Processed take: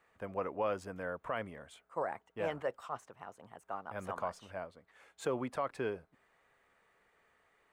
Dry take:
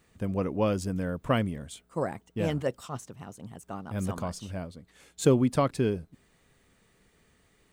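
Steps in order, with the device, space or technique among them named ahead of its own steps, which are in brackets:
DJ mixer with the lows and highs turned down (three-way crossover with the lows and the highs turned down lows −20 dB, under 530 Hz, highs −17 dB, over 2,200 Hz; brickwall limiter −26 dBFS, peak gain reduction 11 dB)
level +1.5 dB

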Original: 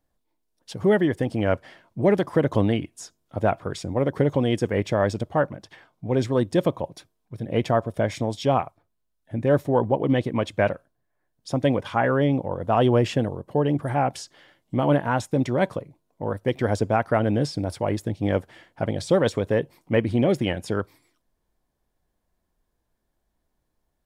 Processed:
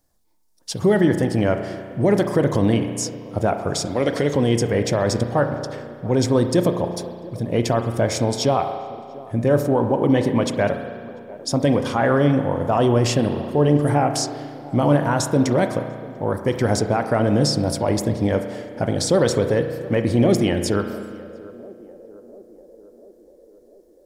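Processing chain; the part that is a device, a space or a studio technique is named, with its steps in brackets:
0:03.85–0:04.34: meter weighting curve D
over-bright horn tweeter (high shelf with overshoot 4,100 Hz +7 dB, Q 1.5; brickwall limiter −14 dBFS, peak gain reduction 6.5 dB)
feedback echo with a band-pass in the loop 694 ms, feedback 68%, band-pass 460 Hz, level −18 dB
spring reverb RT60 1.9 s, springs 34 ms, chirp 35 ms, DRR 7 dB
level +5 dB

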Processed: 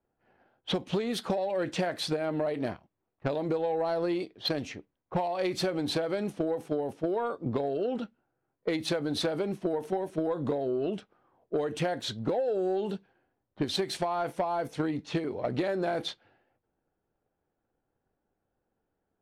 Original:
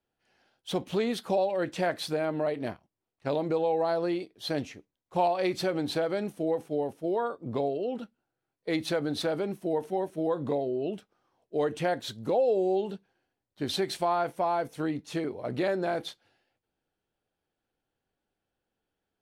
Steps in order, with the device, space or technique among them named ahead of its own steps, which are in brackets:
low-pass that shuts in the quiet parts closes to 1,300 Hz, open at −26.5 dBFS
drum-bus smash (transient designer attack +8 dB, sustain +2 dB; downward compressor 6 to 1, threshold −29 dBFS, peak gain reduction 13.5 dB; soft clipping −23 dBFS, distortion −19 dB)
level +4 dB

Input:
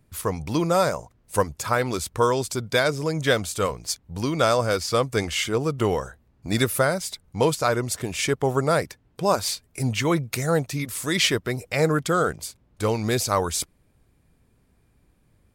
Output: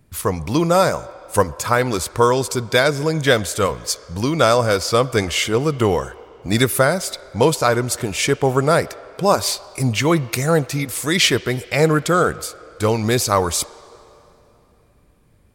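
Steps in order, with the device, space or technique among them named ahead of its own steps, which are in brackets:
filtered reverb send (on a send: high-pass filter 360 Hz 24 dB per octave + low-pass filter 4,900 Hz 12 dB per octave + convolution reverb RT60 3.1 s, pre-delay 14 ms, DRR 17.5 dB)
on the sum: level +5.5 dB

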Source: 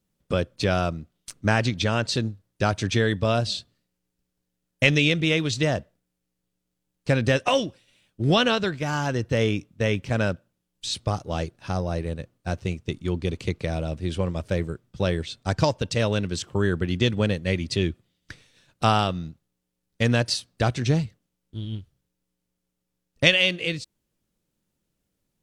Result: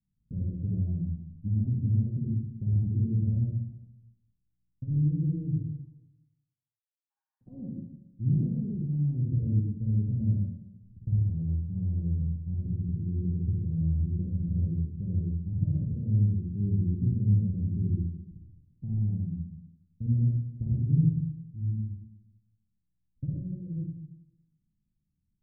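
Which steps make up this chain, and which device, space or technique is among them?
0:05.56–0:07.41: Butterworth high-pass 860 Hz 96 dB per octave
club heard from the street (brickwall limiter −12 dBFS, peak gain reduction 10 dB; low-pass filter 210 Hz 24 dB per octave; convolution reverb RT60 0.95 s, pre-delay 45 ms, DRR −5.5 dB)
level −5.5 dB

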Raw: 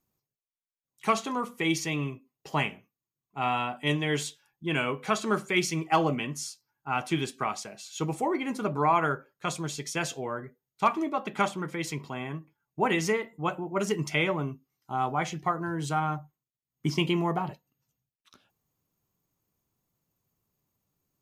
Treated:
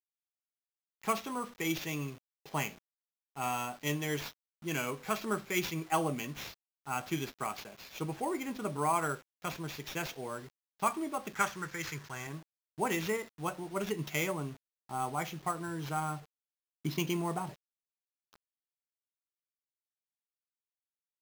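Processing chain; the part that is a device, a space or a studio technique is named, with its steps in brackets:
early 8-bit sampler (sample-rate reduction 9,200 Hz, jitter 0%; bit reduction 8 bits)
0:11.34–0:12.27: graphic EQ with 15 bands 100 Hz +5 dB, 250 Hz −9 dB, 630 Hz −4 dB, 1,600 Hz +9 dB, 6,300 Hz +6 dB
level −6.5 dB

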